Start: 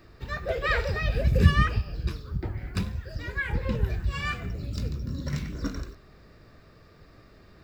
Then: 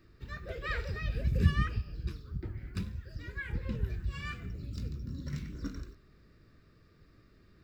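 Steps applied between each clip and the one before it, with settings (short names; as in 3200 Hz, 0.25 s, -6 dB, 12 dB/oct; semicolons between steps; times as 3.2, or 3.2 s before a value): EQ curve 340 Hz 0 dB, 770 Hz -12 dB, 1300 Hz -3 dB; gain -7 dB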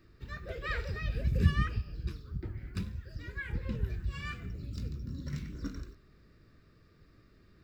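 nothing audible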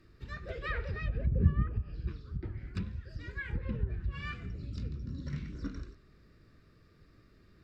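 treble ducked by the level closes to 850 Hz, closed at -26.5 dBFS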